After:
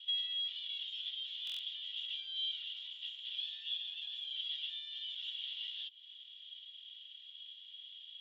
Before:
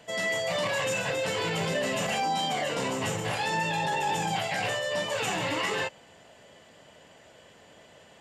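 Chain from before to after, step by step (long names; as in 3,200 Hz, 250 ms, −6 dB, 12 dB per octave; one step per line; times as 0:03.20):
lower of the sound and its delayed copy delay 2.1 ms
0:03.47–0:05.32: comb filter 7.3 ms, depth 79%
downward compressor 16 to 1, threshold −40 dBFS, peak gain reduction 17 dB
flat-topped band-pass 3,300 Hz, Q 6.8
buffer that repeats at 0:01.45, samples 1,024, times 5
level +15.5 dB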